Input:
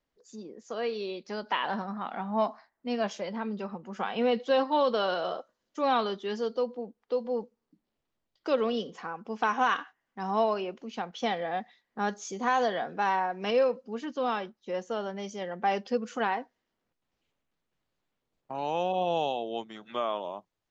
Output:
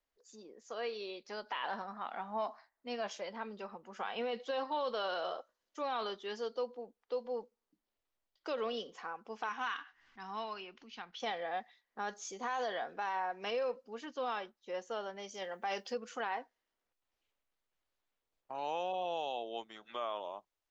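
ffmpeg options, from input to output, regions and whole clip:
ffmpeg -i in.wav -filter_complex "[0:a]asettb=1/sr,asplit=3[link_01][link_02][link_03];[link_01]atrim=end=9.494[link_04];[link_02]atrim=start=9.49:end=11.2,asetpts=PTS-STARTPTS,afade=type=in:duration=0.004:curve=qsin,afade=type=out:start_time=1.706:duration=0.004:curve=qsin,equalizer=frequency=570:width_type=o:width=1.2:gain=-15,acompressor=mode=upward:threshold=-41dB:ratio=2.5:attack=3.2:release=140:knee=2.83:detection=peak,lowpass=frequency=5500:width=0.5412,lowpass=frequency=5500:width=1.3066[link_05];[link_03]atrim=start=11.196[link_06];[link_04][link_05]acrossfade=duration=0.004:curve1=hsin:curve2=qsin[link_07];[link_07][link_06]acrossfade=duration=0.004:curve1=qsin:curve2=hsin,asettb=1/sr,asplit=3[link_08][link_09][link_10];[link_08]atrim=end=15.344[link_11];[link_09]atrim=start=15.34:end=15.94,asetpts=PTS-STARTPTS,afade=type=in:duration=0.004:curve=qsin,afade=type=out:start_time=0.596:duration=0.004:curve=qsin,aemphasis=mode=production:type=50kf,asplit=2[link_12][link_13];[link_13]adelay=21,volume=-13.5dB[link_14];[link_12][link_14]amix=inputs=2:normalize=0,atrim=end_sample=26460[link_15];[link_10]atrim=start=15.936[link_16];[link_11][link_15]acrossfade=duration=0.004:curve1=hsin:curve2=qsin[link_17];[link_17][link_16]acrossfade=duration=0.004:curve1=qsin:curve2=hsin,equalizer=frequency=160:width_type=o:width=2:gain=-13,alimiter=limit=-23.5dB:level=0:latency=1:release=28,volume=-4dB" out.wav

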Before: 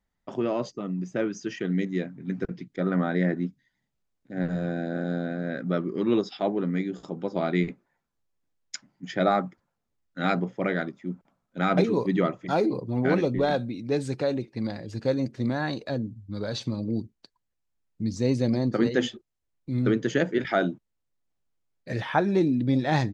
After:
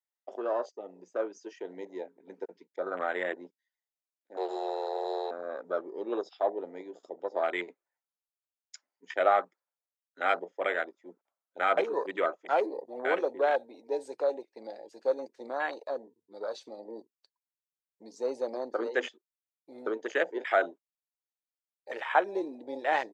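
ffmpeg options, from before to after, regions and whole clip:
ffmpeg -i in.wav -filter_complex "[0:a]asettb=1/sr,asplit=3[link_01][link_02][link_03];[link_01]atrim=end=4.374[link_04];[link_02]atrim=start=4.37:end=5.31,asetpts=PTS-STARTPTS,afade=type=in:duration=0.004:curve=qsin,afade=type=out:start_time=0.936:duration=0.004:curve=qsin,highshelf=frequency=2300:width_type=q:width=3:gain=12,afreqshift=190[link_05];[link_03]atrim=start=5.306[link_06];[link_04][link_05]acrossfade=duration=0.004:curve1=hsin:curve2=qsin[link_07];[link_07][link_06]acrossfade=duration=0.004:curve1=qsin:curve2=hsin,afwtdn=0.02,highpass=frequency=470:width=0.5412,highpass=frequency=470:width=1.3066,highshelf=frequency=6700:gain=10.5" out.wav

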